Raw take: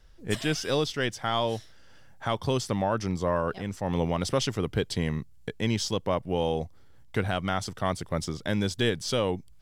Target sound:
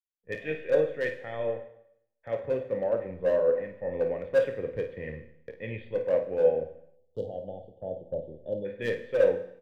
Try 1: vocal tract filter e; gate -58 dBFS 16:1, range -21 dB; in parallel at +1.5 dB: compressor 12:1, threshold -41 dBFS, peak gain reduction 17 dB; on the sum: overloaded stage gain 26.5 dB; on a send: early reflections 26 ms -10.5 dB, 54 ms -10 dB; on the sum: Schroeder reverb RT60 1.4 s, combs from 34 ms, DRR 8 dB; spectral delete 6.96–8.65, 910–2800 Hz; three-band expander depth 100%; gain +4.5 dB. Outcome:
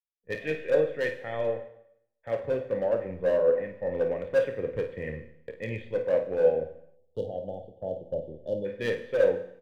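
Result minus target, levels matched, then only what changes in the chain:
compressor: peak gain reduction -5.5 dB
change: compressor 12:1, threshold -47 dBFS, peak gain reduction 22.5 dB

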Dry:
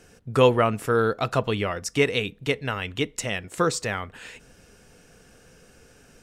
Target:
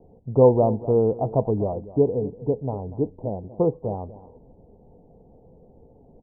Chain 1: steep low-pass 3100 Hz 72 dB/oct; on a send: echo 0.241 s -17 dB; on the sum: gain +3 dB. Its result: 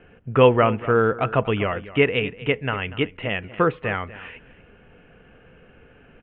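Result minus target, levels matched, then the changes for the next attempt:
1000 Hz band +5.0 dB
change: steep low-pass 910 Hz 72 dB/oct

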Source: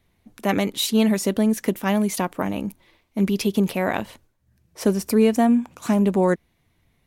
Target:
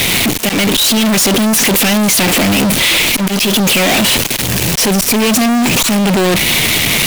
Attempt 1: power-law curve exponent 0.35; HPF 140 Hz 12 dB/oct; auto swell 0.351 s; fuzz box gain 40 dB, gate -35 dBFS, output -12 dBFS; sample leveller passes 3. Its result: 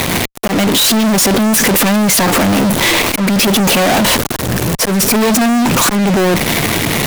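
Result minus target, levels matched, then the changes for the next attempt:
4000 Hz band -2.5 dB
add after HPF: resonant high shelf 1800 Hz +11 dB, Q 1.5

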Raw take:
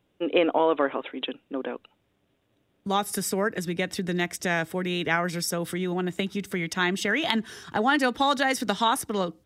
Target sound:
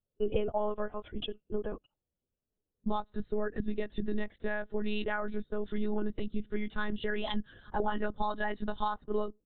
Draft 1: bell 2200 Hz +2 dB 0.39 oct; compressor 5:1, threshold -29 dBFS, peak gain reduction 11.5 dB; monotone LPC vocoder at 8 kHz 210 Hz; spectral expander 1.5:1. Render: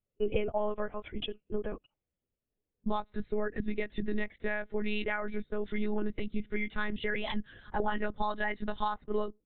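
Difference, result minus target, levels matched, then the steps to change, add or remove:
2000 Hz band +2.5 dB
change: bell 2200 Hz -7 dB 0.39 oct

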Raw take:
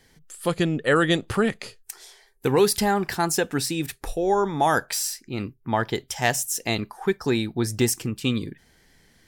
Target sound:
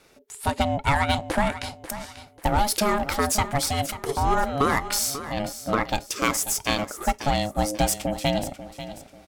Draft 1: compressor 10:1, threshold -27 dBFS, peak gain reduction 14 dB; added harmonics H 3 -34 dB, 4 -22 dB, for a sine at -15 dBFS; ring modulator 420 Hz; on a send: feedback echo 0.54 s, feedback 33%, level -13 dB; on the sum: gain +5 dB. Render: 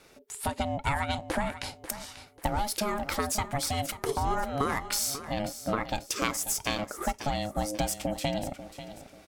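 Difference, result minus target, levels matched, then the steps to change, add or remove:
compressor: peak gain reduction +7.5 dB
change: compressor 10:1, threshold -18.5 dBFS, peak gain reduction 6 dB

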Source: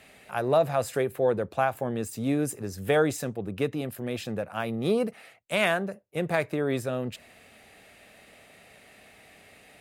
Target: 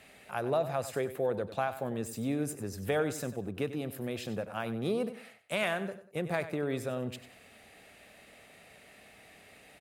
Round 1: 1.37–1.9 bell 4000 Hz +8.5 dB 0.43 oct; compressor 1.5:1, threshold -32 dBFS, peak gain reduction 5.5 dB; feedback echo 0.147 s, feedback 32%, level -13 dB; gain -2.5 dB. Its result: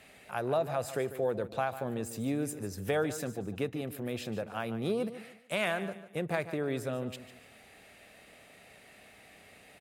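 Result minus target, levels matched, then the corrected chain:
echo 52 ms late
1.37–1.9 bell 4000 Hz +8.5 dB 0.43 oct; compressor 1.5:1, threshold -32 dBFS, peak gain reduction 5.5 dB; feedback echo 95 ms, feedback 32%, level -13 dB; gain -2.5 dB

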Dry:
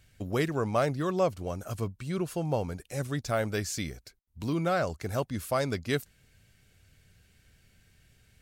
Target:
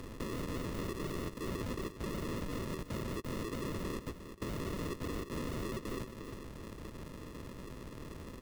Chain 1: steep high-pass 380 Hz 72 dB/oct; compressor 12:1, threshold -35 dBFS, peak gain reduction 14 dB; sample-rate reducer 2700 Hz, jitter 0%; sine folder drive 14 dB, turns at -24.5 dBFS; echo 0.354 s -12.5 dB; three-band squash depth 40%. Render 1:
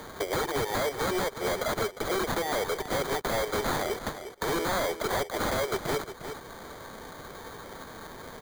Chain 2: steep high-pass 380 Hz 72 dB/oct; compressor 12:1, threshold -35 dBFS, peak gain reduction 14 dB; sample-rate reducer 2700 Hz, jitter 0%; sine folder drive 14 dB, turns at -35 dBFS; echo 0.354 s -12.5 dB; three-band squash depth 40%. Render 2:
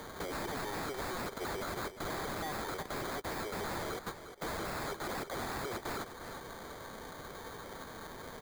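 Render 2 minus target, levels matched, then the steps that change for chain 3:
sample-rate reducer: distortion -15 dB
change: sample-rate reducer 760 Hz, jitter 0%

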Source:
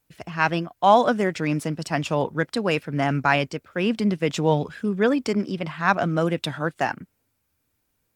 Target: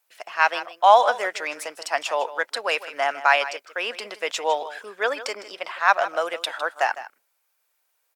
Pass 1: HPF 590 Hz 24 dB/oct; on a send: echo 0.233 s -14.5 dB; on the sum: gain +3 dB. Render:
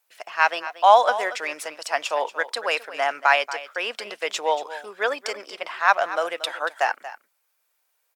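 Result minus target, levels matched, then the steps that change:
echo 77 ms late
change: echo 0.156 s -14.5 dB

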